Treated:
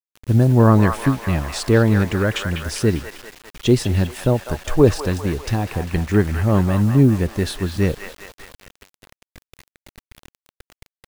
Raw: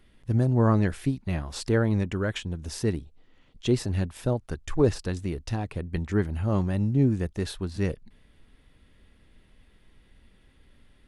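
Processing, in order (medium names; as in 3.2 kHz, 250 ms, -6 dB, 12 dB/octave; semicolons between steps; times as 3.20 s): feedback echo behind a band-pass 199 ms, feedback 58%, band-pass 1.5 kHz, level -4 dB; bit crusher 8-bit; trim +8.5 dB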